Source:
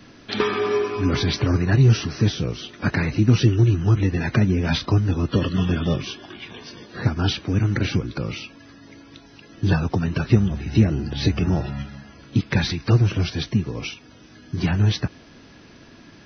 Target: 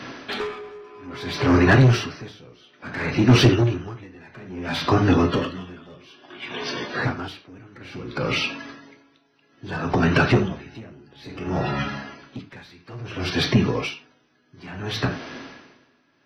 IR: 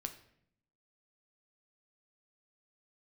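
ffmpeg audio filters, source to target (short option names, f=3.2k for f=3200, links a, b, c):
-filter_complex "[1:a]atrim=start_sample=2205,afade=t=out:st=0.16:d=0.01,atrim=end_sample=7497[a];[0:a][a]afir=irnorm=-1:irlink=0,asplit=2[b][c];[c]highpass=f=720:p=1,volume=26dB,asoftclip=type=tanh:threshold=-3.5dB[d];[b][d]amix=inputs=2:normalize=0,lowpass=f=1.9k:p=1,volume=-6dB,aeval=exprs='val(0)*pow(10,-29*(0.5-0.5*cos(2*PI*0.59*n/s))/20)':c=same"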